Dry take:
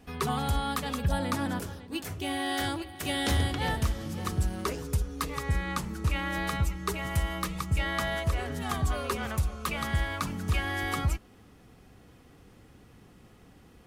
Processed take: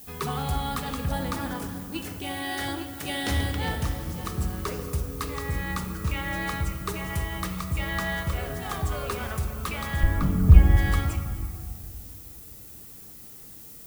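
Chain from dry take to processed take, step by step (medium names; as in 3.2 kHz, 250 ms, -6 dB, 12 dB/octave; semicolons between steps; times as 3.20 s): 10.03–10.77 s: tilt EQ -4.5 dB/octave; added noise violet -45 dBFS; on a send: reverberation RT60 2.1 s, pre-delay 6 ms, DRR 5 dB; on the sum: trim -1 dB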